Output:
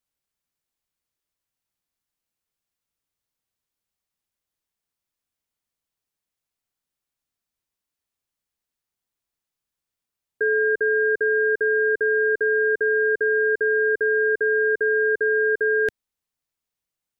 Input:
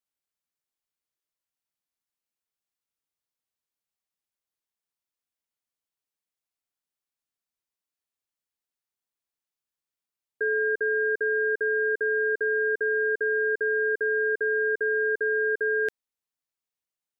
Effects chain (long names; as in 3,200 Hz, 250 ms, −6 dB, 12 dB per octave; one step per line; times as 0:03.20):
low-shelf EQ 180 Hz +8.5 dB
level +4 dB